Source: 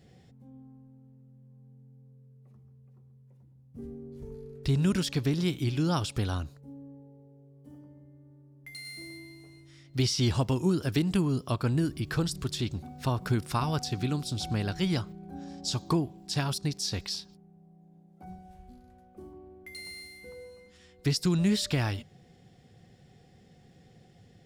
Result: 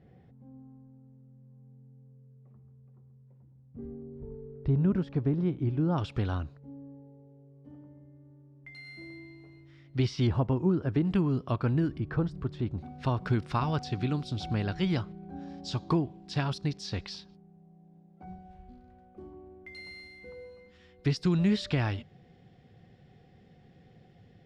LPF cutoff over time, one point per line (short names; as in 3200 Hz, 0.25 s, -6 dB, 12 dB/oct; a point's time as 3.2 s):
1700 Hz
from 4.02 s 1000 Hz
from 5.98 s 2500 Hz
from 10.27 s 1400 Hz
from 11.05 s 2400 Hz
from 11.98 s 1300 Hz
from 12.78 s 3300 Hz